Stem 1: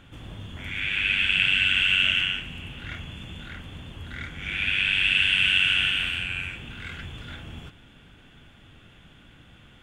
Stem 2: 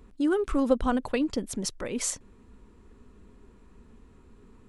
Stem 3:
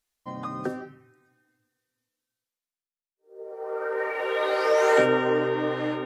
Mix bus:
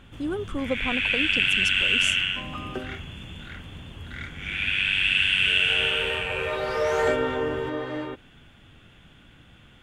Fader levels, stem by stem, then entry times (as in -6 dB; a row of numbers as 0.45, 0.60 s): -0.5, -4.5, -3.5 dB; 0.00, 0.00, 2.10 s